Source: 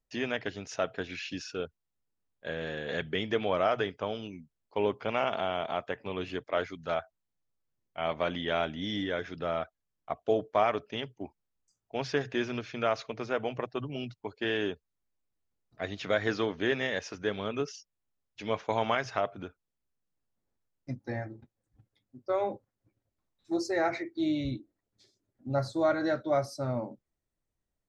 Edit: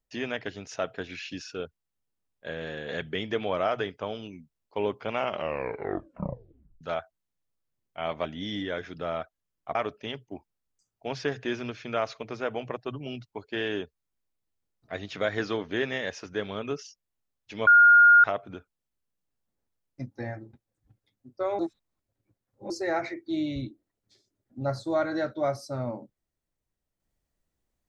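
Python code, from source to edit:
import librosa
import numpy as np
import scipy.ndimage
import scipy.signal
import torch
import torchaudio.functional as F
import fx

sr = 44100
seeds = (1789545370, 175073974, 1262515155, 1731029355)

y = fx.edit(x, sr, fx.tape_stop(start_s=5.21, length_s=1.6),
    fx.cut(start_s=8.25, length_s=0.41),
    fx.cut(start_s=10.16, length_s=0.48),
    fx.bleep(start_s=18.56, length_s=0.57, hz=1420.0, db=-12.0),
    fx.reverse_span(start_s=22.48, length_s=1.11), tone=tone)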